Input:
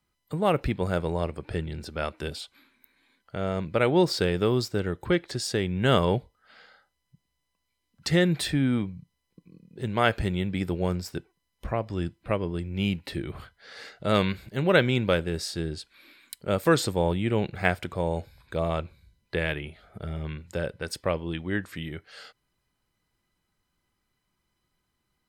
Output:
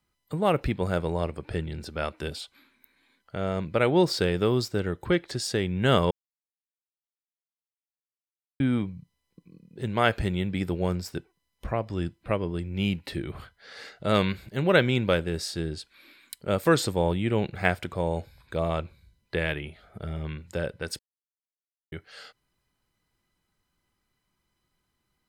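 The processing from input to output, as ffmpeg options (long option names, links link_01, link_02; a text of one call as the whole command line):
ffmpeg -i in.wav -filter_complex "[0:a]asplit=5[link_01][link_02][link_03][link_04][link_05];[link_01]atrim=end=6.11,asetpts=PTS-STARTPTS,afade=type=out:start_time=6.106:duration=0.004:curve=hsin[link_06];[link_02]atrim=start=6.11:end=8.6,asetpts=PTS-STARTPTS,volume=0[link_07];[link_03]atrim=start=8.6:end=20.99,asetpts=PTS-STARTPTS,afade=type=in:duration=0.004:curve=hsin,afade=type=out:start_time=12.386:duration=0.004:curve=hsin[link_08];[link_04]atrim=start=20.99:end=21.92,asetpts=PTS-STARTPTS,volume=0[link_09];[link_05]atrim=start=21.92,asetpts=PTS-STARTPTS,afade=type=in:duration=0.004:curve=hsin[link_10];[link_06][link_07][link_08][link_09][link_10]concat=n=5:v=0:a=1" out.wav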